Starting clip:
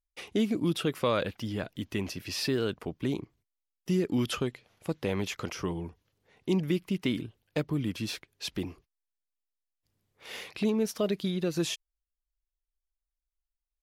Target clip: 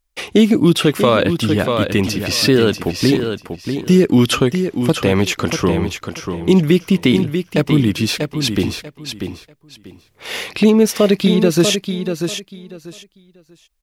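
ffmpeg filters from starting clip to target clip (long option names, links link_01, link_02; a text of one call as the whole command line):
ffmpeg -i in.wav -af "aecho=1:1:640|1280|1920:0.422|0.0886|0.0186,alimiter=level_in=17dB:limit=-1dB:release=50:level=0:latency=1,volume=-1dB" out.wav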